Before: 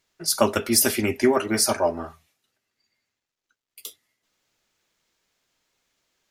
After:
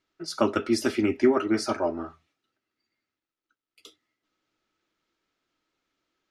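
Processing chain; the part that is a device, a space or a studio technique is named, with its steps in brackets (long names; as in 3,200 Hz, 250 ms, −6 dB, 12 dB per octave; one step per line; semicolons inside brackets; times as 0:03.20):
inside a cardboard box (low-pass filter 4,600 Hz 12 dB per octave; hollow resonant body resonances 310/1,300 Hz, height 11 dB, ringing for 35 ms)
level −6 dB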